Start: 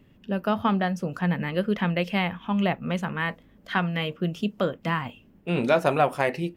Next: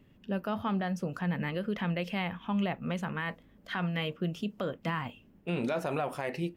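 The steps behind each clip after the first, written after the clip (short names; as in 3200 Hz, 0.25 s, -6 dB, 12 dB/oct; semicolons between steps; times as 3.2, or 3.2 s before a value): limiter -19 dBFS, peak gain reduction 9.5 dB; gain -4 dB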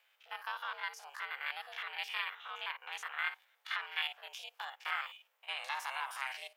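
stepped spectrum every 50 ms; ring modulator 270 Hz; Bessel high-pass 1500 Hz, order 6; gain +7.5 dB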